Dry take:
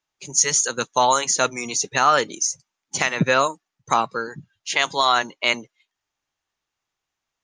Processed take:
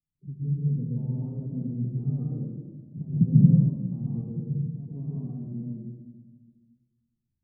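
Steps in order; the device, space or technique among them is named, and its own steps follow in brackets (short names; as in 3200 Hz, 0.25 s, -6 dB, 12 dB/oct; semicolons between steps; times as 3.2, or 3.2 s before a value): club heard from the street (limiter -10.5 dBFS, peak gain reduction 6.5 dB; LPF 200 Hz 24 dB/oct; reverb RT60 1.4 s, pre-delay 0.116 s, DRR -5.5 dB); harmonic-percussive split percussive -4 dB; gain +5.5 dB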